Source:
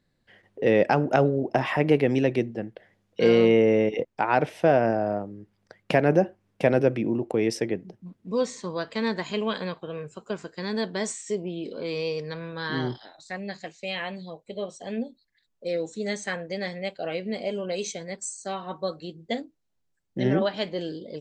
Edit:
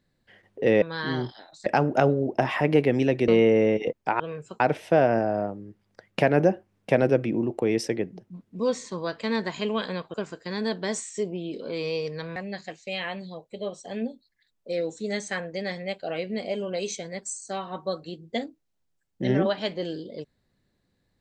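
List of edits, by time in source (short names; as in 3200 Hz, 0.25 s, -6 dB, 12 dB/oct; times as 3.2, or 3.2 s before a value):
2.44–3.4 cut
9.86–10.26 move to 4.32
12.48–13.32 move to 0.82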